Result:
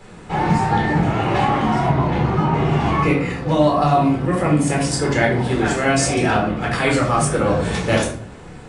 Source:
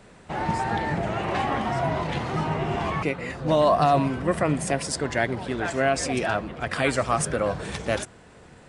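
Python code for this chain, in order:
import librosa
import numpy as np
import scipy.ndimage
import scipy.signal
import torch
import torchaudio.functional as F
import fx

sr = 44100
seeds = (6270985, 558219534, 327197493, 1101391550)

y = fx.high_shelf(x, sr, hz=2800.0, db=-11.0, at=(1.89, 2.54))
y = fx.room_shoebox(y, sr, seeds[0], volume_m3=560.0, walls='furnished', distance_m=4.1)
y = fx.rider(y, sr, range_db=3, speed_s=0.5)
y = fx.high_shelf(y, sr, hz=8000.0, db=9.5, at=(5.44, 6.14))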